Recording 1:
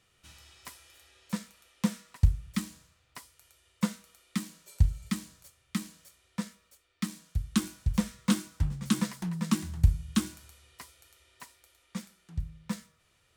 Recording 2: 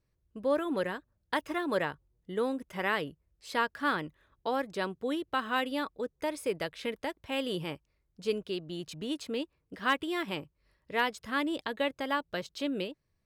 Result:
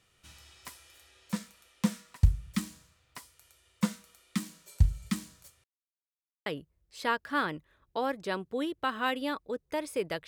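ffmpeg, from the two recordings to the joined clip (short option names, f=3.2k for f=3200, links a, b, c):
-filter_complex "[0:a]apad=whole_dur=10.27,atrim=end=10.27,asplit=2[a][b];[a]atrim=end=5.64,asetpts=PTS-STARTPTS,afade=t=out:st=5.636:d=0.004:c=hsin[c];[b]atrim=start=5.64:end=6.46,asetpts=PTS-STARTPTS,volume=0[d];[1:a]atrim=start=2.96:end=6.77,asetpts=PTS-STARTPTS,afade=t=in:d=0.004:c=hsin[e];[c][d][e]concat=n=3:v=0:a=1"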